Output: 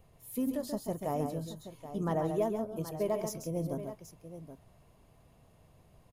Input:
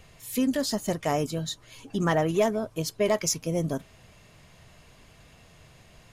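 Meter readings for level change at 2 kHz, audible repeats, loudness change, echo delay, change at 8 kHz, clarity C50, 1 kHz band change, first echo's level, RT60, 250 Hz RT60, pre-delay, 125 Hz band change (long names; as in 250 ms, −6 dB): −17.0 dB, 2, −7.5 dB, 135 ms, −15.0 dB, no reverb audible, −7.0 dB, −7.0 dB, no reverb audible, no reverb audible, no reverb audible, −6.5 dB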